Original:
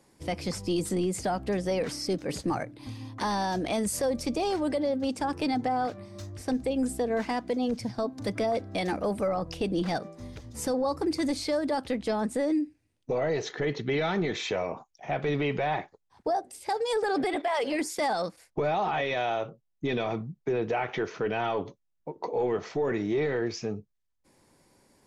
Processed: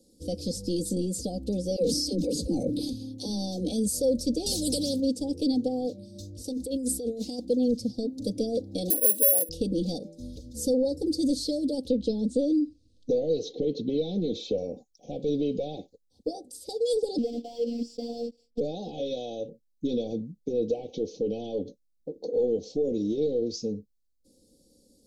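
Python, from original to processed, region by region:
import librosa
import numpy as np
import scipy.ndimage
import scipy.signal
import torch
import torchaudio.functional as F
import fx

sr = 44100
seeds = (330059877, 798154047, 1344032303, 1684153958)

y = fx.chain(x, sr, fx.dispersion(late='lows', ms=59.0, hz=340.0),
    fx.sustainer(db_per_s=27.0), at=(1.76, 3.72))
y = fx.chain(y, sr, fx.highpass(hz=57.0, slope=12),
    fx.bass_treble(bass_db=12, treble_db=10),
    fx.spectral_comp(ratio=2.0), at=(4.46, 5.0))
y = fx.chain(y, sr, fx.tilt_eq(slope=1.5),
    fx.over_compress(threshold_db=-32.0, ratio=-0.5), at=(6.44, 7.45))
y = fx.chain(y, sr, fx.highpass(hz=310.0, slope=24),
    fx.resample_bad(factor=4, down='none', up='zero_stuff'), at=(8.9, 9.49))
y = fx.chain(y, sr, fx.lowpass(hz=4400.0, slope=12),
    fx.resample_bad(factor=2, down='none', up='filtered'),
    fx.band_squash(depth_pct=70), at=(11.88, 14.58))
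y = fx.chain(y, sr, fx.block_float(bits=3),
    fx.robotise(hz=234.0),
    fx.air_absorb(metres=190.0), at=(17.18, 18.61))
y = scipy.signal.sosfilt(scipy.signal.ellip(3, 1.0, 80, [510.0, 4000.0], 'bandstop', fs=sr, output='sos'), y)
y = y + 0.66 * np.pad(y, (int(3.9 * sr / 1000.0), 0))[:len(y)]
y = y * 10.0 ** (1.0 / 20.0)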